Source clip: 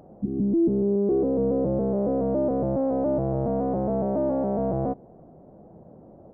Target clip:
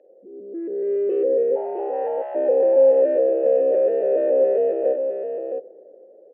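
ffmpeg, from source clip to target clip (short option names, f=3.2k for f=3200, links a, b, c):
-filter_complex "[0:a]highpass=f=380:t=q:w=3.5,dynaudnorm=f=110:g=13:m=11dB,aeval=exprs='0.891*(cos(1*acos(clip(val(0)/0.891,-1,1)))-cos(1*PI/2))+0.0141*(cos(7*acos(clip(val(0)/0.891,-1,1)))-cos(7*PI/2))+0.00631*(cos(8*acos(clip(val(0)/0.891,-1,1)))-cos(8*PI/2))':c=same,asoftclip=type=tanh:threshold=-4dB,asplit=3[a][b][c];[a]afade=t=out:st=1.55:d=0.02[d];[b]afreqshift=370,afade=t=in:st=1.55:d=0.02,afade=t=out:st=2.34:d=0.02[e];[c]afade=t=in:st=2.34:d=0.02[f];[d][e][f]amix=inputs=3:normalize=0,asplit=3[g][h][i];[g]bandpass=f=530:t=q:w=8,volume=0dB[j];[h]bandpass=f=1.84k:t=q:w=8,volume=-6dB[k];[i]bandpass=f=2.48k:t=q:w=8,volume=-9dB[l];[j][k][l]amix=inputs=3:normalize=0,aecho=1:1:52|662:0.2|0.473"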